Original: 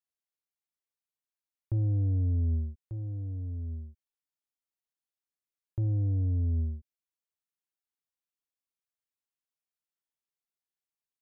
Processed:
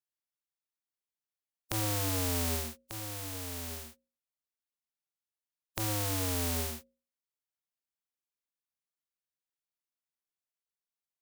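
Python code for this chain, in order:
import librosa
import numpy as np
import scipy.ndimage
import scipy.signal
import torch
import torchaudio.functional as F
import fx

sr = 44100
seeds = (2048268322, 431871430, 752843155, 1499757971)

y = fx.spec_flatten(x, sr, power=0.26)
y = fx.hum_notches(y, sr, base_hz=60, count=9)
y = F.gain(torch.from_numpy(y), -4.0).numpy()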